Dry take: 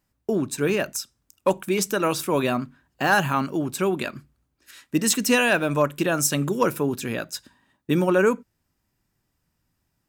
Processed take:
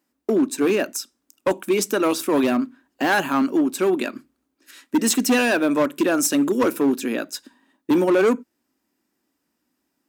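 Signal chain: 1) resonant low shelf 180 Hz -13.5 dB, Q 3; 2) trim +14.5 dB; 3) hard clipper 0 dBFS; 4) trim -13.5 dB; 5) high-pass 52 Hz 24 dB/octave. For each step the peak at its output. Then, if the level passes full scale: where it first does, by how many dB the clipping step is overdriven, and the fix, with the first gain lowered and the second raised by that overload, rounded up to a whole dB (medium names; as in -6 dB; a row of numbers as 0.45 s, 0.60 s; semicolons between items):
-4.5 dBFS, +10.0 dBFS, 0.0 dBFS, -13.5 dBFS, -9.0 dBFS; step 2, 10.0 dB; step 2 +4.5 dB, step 4 -3.5 dB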